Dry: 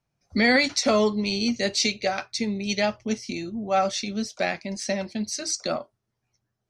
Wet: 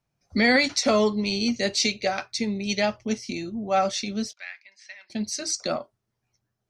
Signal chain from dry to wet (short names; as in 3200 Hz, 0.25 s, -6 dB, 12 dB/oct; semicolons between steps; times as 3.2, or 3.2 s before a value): 4.33–5.1 ladder band-pass 2300 Hz, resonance 40%